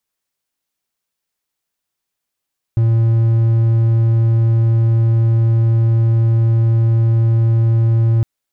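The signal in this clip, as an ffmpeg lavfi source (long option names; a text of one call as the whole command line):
ffmpeg -f lavfi -i "aevalsrc='0.398*(1-4*abs(mod(114*t+0.25,1)-0.5))':duration=5.46:sample_rate=44100" out.wav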